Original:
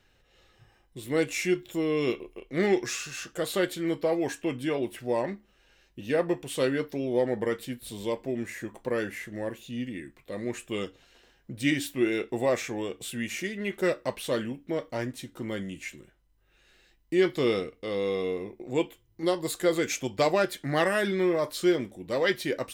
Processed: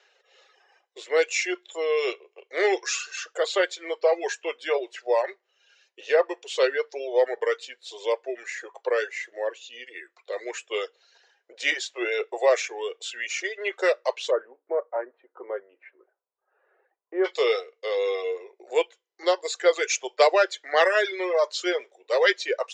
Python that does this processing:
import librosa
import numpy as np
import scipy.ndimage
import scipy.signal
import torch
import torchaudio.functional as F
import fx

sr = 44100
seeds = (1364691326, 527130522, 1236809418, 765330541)

y = fx.lowpass(x, sr, hz=1300.0, slope=24, at=(14.3, 17.24), fade=0.02)
y = scipy.signal.sosfilt(scipy.signal.cheby1(5, 1.0, [410.0, 7100.0], 'bandpass', fs=sr, output='sos'), y)
y = fx.dereverb_blind(y, sr, rt60_s=1.2)
y = y * 10.0 ** (7.0 / 20.0)